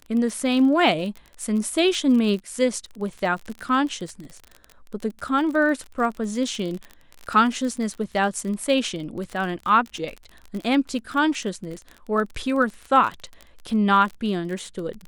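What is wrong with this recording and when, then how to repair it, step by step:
crackle 31 per s -29 dBFS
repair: de-click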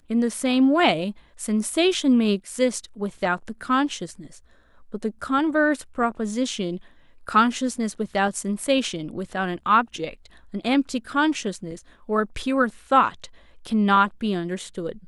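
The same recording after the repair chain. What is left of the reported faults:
nothing left

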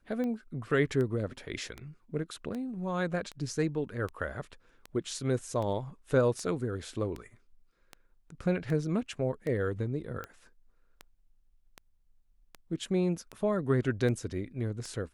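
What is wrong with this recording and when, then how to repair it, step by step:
tick 78 rpm -25 dBFS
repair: de-click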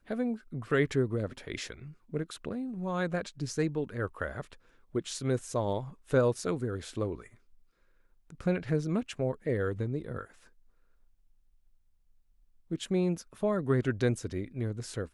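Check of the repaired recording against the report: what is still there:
nothing left

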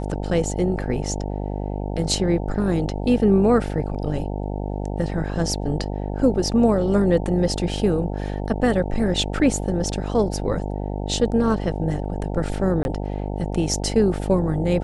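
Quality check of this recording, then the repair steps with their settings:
buzz 50 Hz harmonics 18 -27 dBFS
12.83–12.85 s: dropout 21 ms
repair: de-hum 50 Hz, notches 18; interpolate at 12.83 s, 21 ms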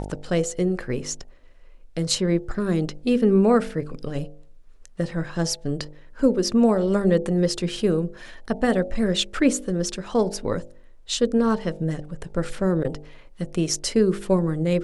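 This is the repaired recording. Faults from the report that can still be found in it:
nothing left

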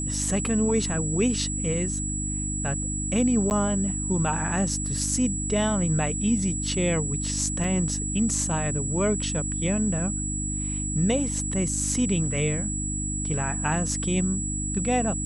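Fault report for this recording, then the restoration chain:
hum 50 Hz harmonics 6 -31 dBFS
whine 7.8 kHz -30 dBFS
3.50–3.51 s: dropout 9.9 ms
7.64 s: dropout 2.5 ms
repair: de-hum 50 Hz, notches 6; band-stop 7.8 kHz, Q 30; interpolate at 3.50 s, 9.9 ms; interpolate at 7.64 s, 2.5 ms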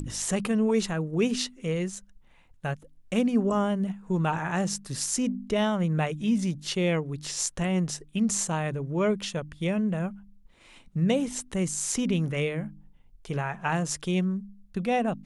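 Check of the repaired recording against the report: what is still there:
nothing left

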